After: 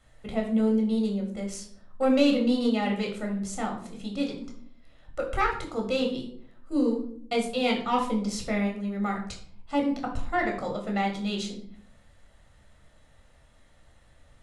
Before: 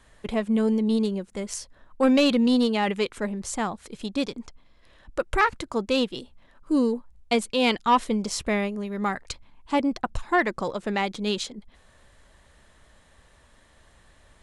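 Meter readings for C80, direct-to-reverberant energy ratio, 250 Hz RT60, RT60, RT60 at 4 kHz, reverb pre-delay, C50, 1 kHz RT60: 11.0 dB, 0.5 dB, 0.90 s, 0.60 s, 0.40 s, 4 ms, 8.0 dB, 0.50 s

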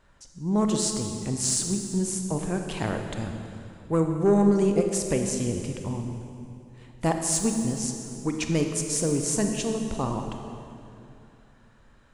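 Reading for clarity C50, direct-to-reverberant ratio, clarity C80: 4.5 dB, 4.0 dB, 5.5 dB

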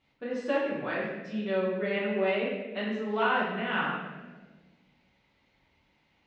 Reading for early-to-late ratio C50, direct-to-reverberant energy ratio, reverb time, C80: 1.0 dB, -8.0 dB, 1.3 s, 3.5 dB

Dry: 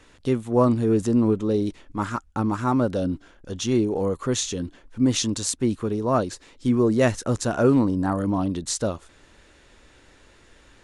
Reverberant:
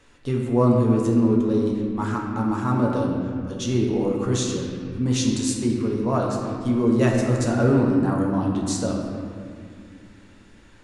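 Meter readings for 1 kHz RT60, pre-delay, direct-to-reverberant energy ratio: 2.0 s, 7 ms, -2.0 dB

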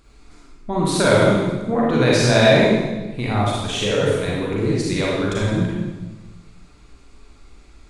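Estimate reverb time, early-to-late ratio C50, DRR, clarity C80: 1.2 s, -2.5 dB, -5.0 dB, 1.5 dB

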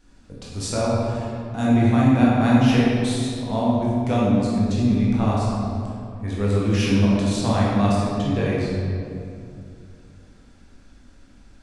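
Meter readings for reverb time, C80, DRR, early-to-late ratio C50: 2.6 s, -0.5 dB, -6.5 dB, -2.5 dB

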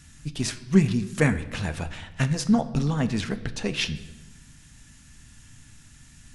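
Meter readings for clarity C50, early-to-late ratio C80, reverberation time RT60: 14.0 dB, 16.5 dB, 1.0 s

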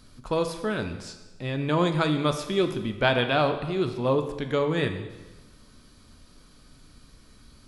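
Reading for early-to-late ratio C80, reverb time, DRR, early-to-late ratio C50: 11.0 dB, 1.2 s, 6.5 dB, 9.0 dB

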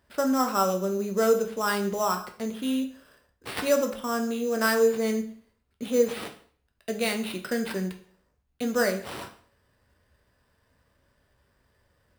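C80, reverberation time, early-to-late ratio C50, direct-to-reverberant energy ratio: 15.0 dB, 0.50 s, 11.0 dB, 4.5 dB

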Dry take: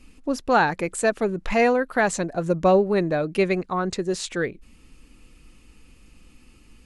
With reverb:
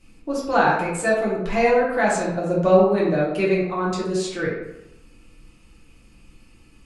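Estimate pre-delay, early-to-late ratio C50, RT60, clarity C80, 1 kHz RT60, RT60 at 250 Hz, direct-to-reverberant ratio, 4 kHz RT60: 4 ms, 1.5 dB, 0.90 s, 5.0 dB, 0.90 s, 0.90 s, -6.5 dB, 0.55 s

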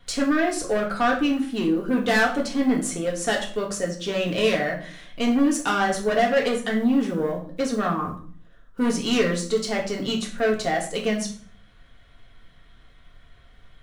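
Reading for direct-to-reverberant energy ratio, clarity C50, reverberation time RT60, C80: -1.0 dB, 8.5 dB, 0.50 s, 13.5 dB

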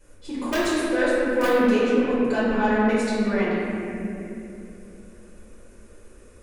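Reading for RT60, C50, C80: 2.7 s, -3.5 dB, -2.0 dB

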